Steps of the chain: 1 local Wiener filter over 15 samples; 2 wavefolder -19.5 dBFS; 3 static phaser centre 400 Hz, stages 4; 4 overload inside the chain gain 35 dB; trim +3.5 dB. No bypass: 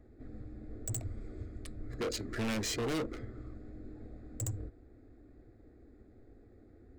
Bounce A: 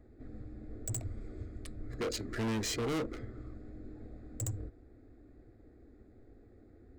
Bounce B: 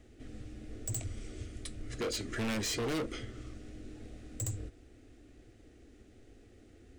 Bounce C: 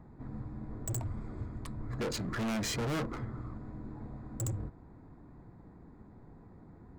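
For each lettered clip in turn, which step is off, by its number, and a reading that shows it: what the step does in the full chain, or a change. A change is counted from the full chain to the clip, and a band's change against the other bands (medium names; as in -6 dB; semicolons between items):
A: 2, distortion -5 dB; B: 1, 4 kHz band +2.0 dB; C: 3, crest factor change -1.5 dB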